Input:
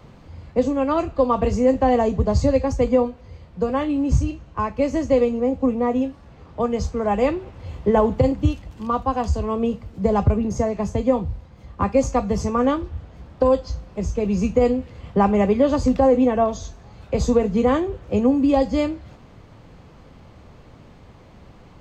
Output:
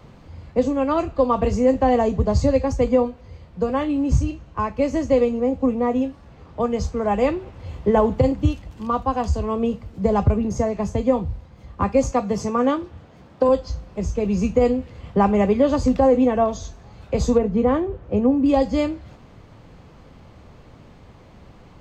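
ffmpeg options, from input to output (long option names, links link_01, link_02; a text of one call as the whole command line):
ffmpeg -i in.wav -filter_complex "[0:a]asettb=1/sr,asplit=3[link_01][link_02][link_03];[link_01]atrim=end=12.114[link_04];[link_02]atrim=start=12.11:end=13.49,asetpts=PTS-STARTPTS,afade=type=in:duration=0.004:curve=qsin,afade=type=out:start_time=1.376:duration=0.004:curve=qsin,highpass=140[link_05];[link_03]atrim=start=13.486[link_06];[link_04][link_05]acrossfade=duration=0.004:curve1=hsin:curve2=qsin[link_07];[link_07][link_06]acrossfade=duration=0.004:curve1=qsin:curve2=hsin,asettb=1/sr,asplit=3[link_08][link_09][link_10];[link_08]atrim=end=17.384[link_11];[link_09]atrim=start=17.38:end=18.46,asetpts=PTS-STARTPTS,afade=type=in:duration=0.004:curve=qsin,afade=type=out:start_time=1.076:duration=0.004:curve=qsin,lowpass=frequency=1400:poles=1[link_12];[link_10]atrim=start=18.456[link_13];[link_11][link_12]acrossfade=duration=0.004:curve1=hsin:curve2=qsin[link_14];[link_14][link_13]acrossfade=duration=0.004:curve1=qsin:curve2=hsin" out.wav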